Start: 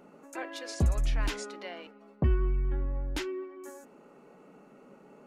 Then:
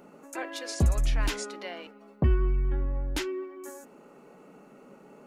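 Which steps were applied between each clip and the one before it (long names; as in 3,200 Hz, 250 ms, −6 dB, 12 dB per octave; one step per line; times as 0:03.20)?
high-shelf EQ 6,800 Hz +5.5 dB
level +2.5 dB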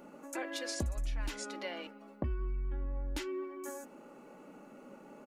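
comb filter 3.5 ms, depth 39%
downward compressor 4 to 1, threshold −33 dBFS, peak gain reduction 13.5 dB
level −1.5 dB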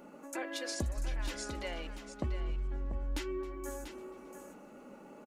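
on a send: single-tap delay 690 ms −9.5 dB
on the sum: feedback echo with a swinging delay time 271 ms, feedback 64%, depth 159 cents, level −21 dB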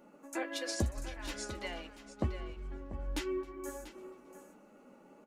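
flanger 1.3 Hz, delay 8.8 ms, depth 3.3 ms, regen −44%
expander for the loud parts 1.5 to 1, over −56 dBFS
level +8 dB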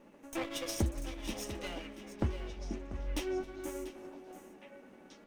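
lower of the sound and its delayed copy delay 0.33 ms
echo through a band-pass that steps 484 ms, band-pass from 260 Hz, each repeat 1.4 octaves, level −5 dB
level +1 dB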